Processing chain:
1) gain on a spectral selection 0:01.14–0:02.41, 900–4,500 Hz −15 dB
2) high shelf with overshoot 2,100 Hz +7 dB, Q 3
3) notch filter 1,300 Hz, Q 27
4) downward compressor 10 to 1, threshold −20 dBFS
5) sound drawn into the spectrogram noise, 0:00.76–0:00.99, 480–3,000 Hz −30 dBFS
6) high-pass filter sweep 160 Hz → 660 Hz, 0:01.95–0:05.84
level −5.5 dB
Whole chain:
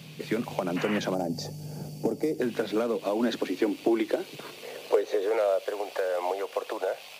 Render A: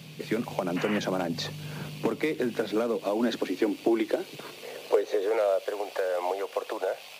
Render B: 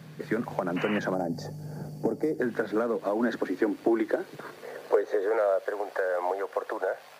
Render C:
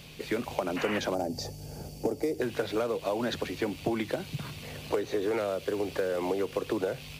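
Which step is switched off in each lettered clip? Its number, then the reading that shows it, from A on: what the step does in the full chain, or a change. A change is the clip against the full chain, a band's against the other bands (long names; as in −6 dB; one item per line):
1, change in momentary loudness spread −2 LU
2, 4 kHz band −8.0 dB
6, 250 Hz band −3.0 dB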